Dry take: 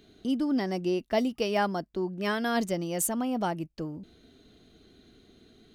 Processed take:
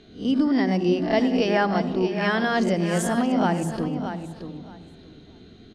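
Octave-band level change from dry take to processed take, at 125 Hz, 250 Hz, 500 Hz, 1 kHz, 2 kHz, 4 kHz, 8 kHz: +10.0, +7.5, +6.5, +6.0, +8.0, +5.5, −1.5 decibels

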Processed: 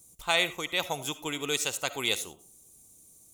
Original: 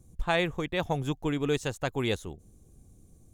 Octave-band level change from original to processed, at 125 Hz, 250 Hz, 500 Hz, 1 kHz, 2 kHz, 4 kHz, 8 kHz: −12.5, −8.0, −4.5, −0.5, +3.0, +8.0, +13.0 decibels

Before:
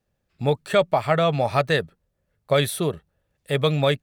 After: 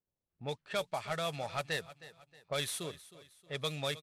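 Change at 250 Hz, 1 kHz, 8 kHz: −18.5, −15.5, −7.0 decibels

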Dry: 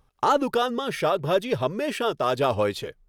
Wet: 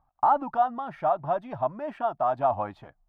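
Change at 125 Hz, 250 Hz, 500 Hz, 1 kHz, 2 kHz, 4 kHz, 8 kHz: −8.5 dB, −9.0 dB, −5.5 dB, +2.0 dB, −11.0 dB, below −20 dB, below −30 dB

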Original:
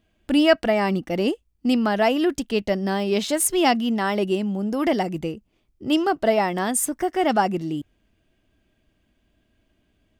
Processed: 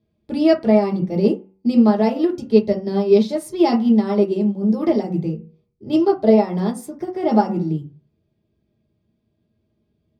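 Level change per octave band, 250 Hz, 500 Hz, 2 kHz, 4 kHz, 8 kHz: +5.5 dB, +4.5 dB, −9.5 dB, −7.5 dB, below −15 dB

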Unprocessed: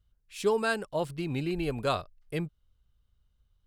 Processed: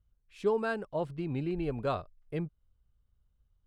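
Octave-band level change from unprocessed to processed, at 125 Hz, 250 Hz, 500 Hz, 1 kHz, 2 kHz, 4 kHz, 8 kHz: −1.5 dB, −1.5 dB, −2.0 dB, −3.5 dB, −6.5 dB, −11.5 dB, below −15 dB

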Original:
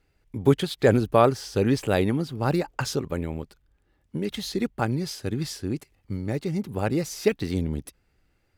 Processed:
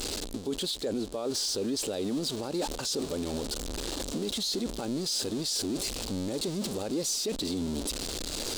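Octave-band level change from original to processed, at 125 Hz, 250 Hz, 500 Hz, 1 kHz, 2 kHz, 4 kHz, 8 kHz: −13.5, −5.5, −8.5, −12.0, −10.5, +5.5, +7.5 decibels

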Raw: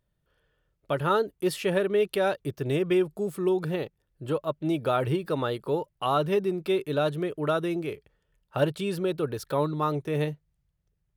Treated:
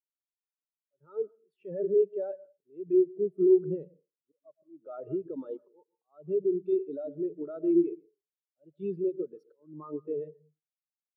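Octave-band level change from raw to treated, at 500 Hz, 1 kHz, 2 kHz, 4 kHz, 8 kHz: −2.5 dB, below −20 dB, below −30 dB, below −40 dB, can't be measured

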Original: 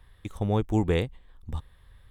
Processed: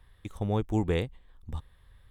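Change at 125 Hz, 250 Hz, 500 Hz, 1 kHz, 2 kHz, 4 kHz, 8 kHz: −3.0, −3.0, −3.0, −3.0, −3.0, −3.0, −3.0 decibels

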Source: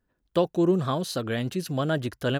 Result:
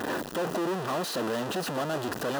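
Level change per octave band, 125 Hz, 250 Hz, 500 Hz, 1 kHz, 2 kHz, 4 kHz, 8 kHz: −10.5, −6.0, −3.5, +1.5, +0.5, −1.0, +2.5 decibels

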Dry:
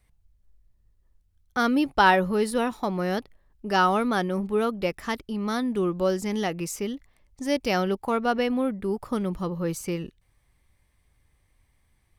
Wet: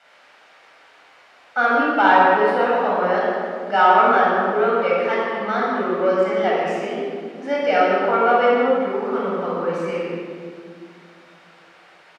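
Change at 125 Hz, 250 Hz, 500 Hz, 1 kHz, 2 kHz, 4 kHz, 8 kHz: −3.5 dB, 0.0 dB, +8.5 dB, +9.5 dB, +8.0 dB, +1.0 dB, below −10 dB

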